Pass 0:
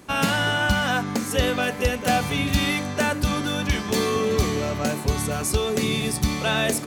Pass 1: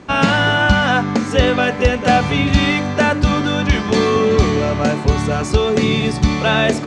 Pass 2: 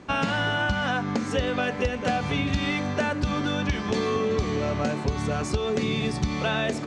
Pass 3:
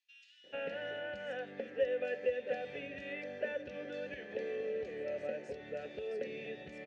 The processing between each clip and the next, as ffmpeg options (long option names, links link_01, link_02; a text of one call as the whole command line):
ffmpeg -i in.wav -af "lowpass=frequency=7600:width=0.5412,lowpass=frequency=7600:width=1.3066,aemphasis=mode=reproduction:type=50fm,volume=8dB" out.wav
ffmpeg -i in.wav -af "acompressor=threshold=-15dB:ratio=6,volume=-6.5dB" out.wav
ffmpeg -i in.wav -filter_complex "[0:a]asplit=3[link_01][link_02][link_03];[link_01]bandpass=frequency=530:width_type=q:width=8,volume=0dB[link_04];[link_02]bandpass=frequency=1840:width_type=q:width=8,volume=-6dB[link_05];[link_03]bandpass=frequency=2480:width_type=q:width=8,volume=-9dB[link_06];[link_04][link_05][link_06]amix=inputs=3:normalize=0,acrossover=split=3700[link_07][link_08];[link_07]adelay=440[link_09];[link_09][link_08]amix=inputs=2:normalize=0,volume=-2dB" out.wav